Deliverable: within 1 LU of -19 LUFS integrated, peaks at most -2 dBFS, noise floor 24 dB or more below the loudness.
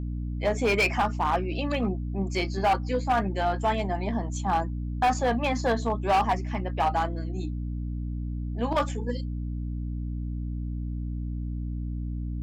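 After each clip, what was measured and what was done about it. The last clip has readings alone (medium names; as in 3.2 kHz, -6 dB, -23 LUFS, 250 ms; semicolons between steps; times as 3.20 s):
clipped samples 1.4%; clipping level -18.0 dBFS; hum 60 Hz; highest harmonic 300 Hz; hum level -29 dBFS; loudness -28.5 LUFS; peak level -18.0 dBFS; loudness target -19.0 LUFS
-> clip repair -18 dBFS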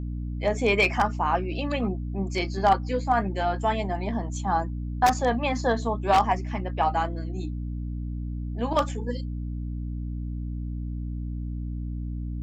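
clipped samples 0.0%; hum 60 Hz; highest harmonic 300 Hz; hum level -29 dBFS
-> hum notches 60/120/180/240/300 Hz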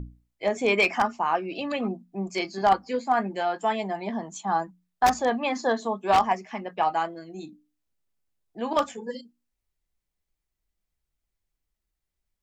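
hum not found; loudness -26.5 LUFS; peak level -8.0 dBFS; loudness target -19.0 LUFS
-> trim +7.5 dB; peak limiter -2 dBFS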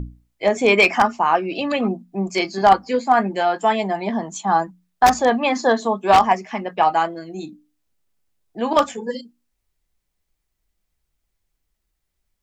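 loudness -19.0 LUFS; peak level -2.0 dBFS; noise floor -76 dBFS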